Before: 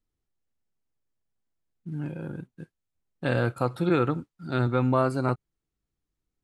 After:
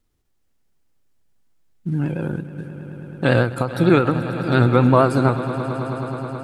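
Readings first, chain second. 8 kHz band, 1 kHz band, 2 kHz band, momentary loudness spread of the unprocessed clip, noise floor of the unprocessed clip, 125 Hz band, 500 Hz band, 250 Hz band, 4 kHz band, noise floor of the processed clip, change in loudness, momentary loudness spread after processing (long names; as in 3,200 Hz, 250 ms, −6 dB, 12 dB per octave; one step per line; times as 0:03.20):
can't be measured, +8.5 dB, +9.5 dB, 15 LU, below −85 dBFS, +9.5 dB, +9.0 dB, +9.5 dB, +10.0 dB, −66 dBFS, +8.0 dB, 18 LU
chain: in parallel at −1.5 dB: downward compressor, threshold −34 dBFS, peak gain reduction 15 dB
on the sum: pitch vibrato 8.8 Hz 61 cents
echo that builds up and dies away 107 ms, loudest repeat 5, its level −17 dB
every ending faded ahead of time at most 130 dB per second
level +7.5 dB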